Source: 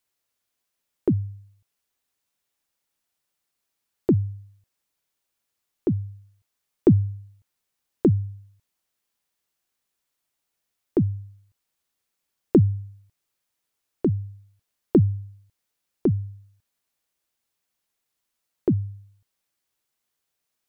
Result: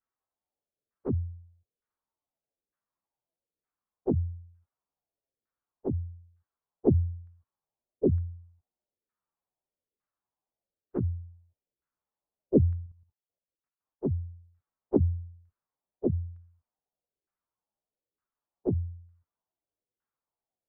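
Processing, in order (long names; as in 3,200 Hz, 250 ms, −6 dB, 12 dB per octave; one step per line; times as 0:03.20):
partials spread apart or drawn together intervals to 116%
0:12.86–0:14.05: output level in coarse steps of 11 dB
auto-filter low-pass saw down 1.1 Hz 420–1,500 Hz
level −3.5 dB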